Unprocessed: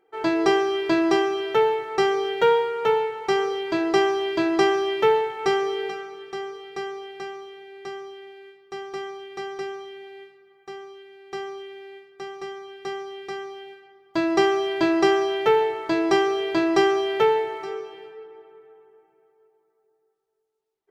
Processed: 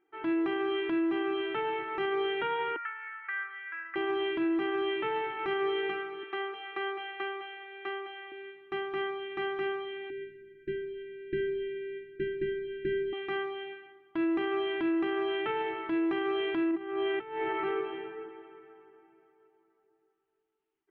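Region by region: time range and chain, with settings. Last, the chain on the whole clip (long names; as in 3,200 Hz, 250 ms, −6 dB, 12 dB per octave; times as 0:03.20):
0:02.76–0:03.96: downward compressor 3 to 1, threshold −22 dBFS + flat-topped band-pass 1,700 Hz, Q 2.5
0:06.23–0:08.32: band-pass filter 450–4,700 Hz + single-tap delay 208 ms −11 dB
0:10.10–0:13.13: linear-phase brick-wall band-stop 410–1,400 Hz + spectral tilt −4 dB per octave
0:16.71–0:18.29: high-frequency loss of the air 210 metres + compressor whose output falls as the input rises −26 dBFS, ratio −0.5 + one half of a high-frequency compander decoder only
whole clip: drawn EQ curve 200 Hz 0 dB, 330 Hz +8 dB, 490 Hz −11 dB, 750 Hz −3 dB, 1,400 Hz +3 dB, 3,000 Hz +3 dB, 5,100 Hz −27 dB; automatic gain control gain up to 9.5 dB; brickwall limiter −14.5 dBFS; level −9 dB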